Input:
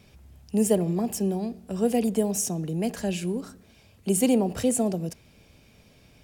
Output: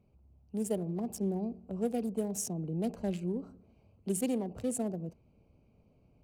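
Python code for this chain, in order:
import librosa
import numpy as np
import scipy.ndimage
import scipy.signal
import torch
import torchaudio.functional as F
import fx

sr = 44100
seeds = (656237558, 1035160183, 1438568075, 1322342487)

y = fx.wiener(x, sr, points=25)
y = fx.rider(y, sr, range_db=10, speed_s=0.5)
y = y * librosa.db_to_amplitude(-8.0)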